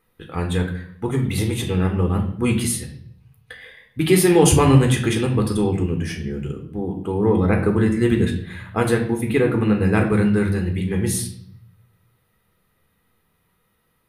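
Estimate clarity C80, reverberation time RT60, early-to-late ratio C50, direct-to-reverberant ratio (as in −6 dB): 12.0 dB, 0.60 s, 8.5 dB, 2.5 dB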